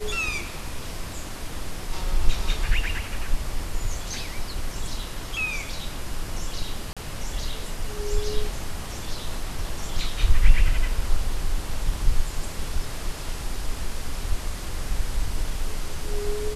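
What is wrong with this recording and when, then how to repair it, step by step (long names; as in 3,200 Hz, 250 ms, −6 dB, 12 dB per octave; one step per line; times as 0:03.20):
0:06.93–0:06.97: drop-out 36 ms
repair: repair the gap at 0:06.93, 36 ms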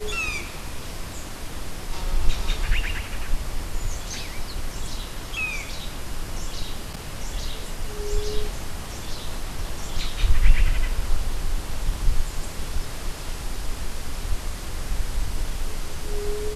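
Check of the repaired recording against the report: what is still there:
none of them is left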